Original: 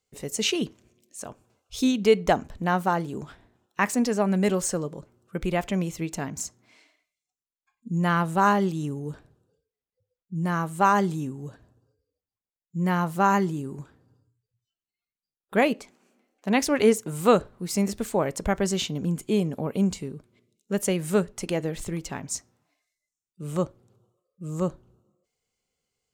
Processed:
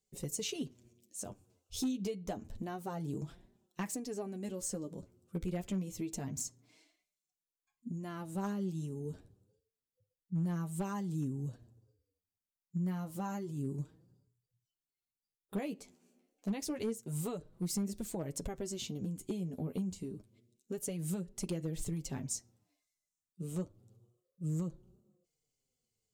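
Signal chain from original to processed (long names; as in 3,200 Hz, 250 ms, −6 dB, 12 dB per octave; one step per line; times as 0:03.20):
parametric band 1,400 Hz −13 dB 2.6 octaves
downward compressor 20 to 1, threshold −32 dBFS, peak gain reduction 16.5 dB
flanger 0.28 Hz, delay 4.9 ms, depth 7.1 ms, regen +15%
gain into a clipping stage and back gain 30.5 dB
level +2 dB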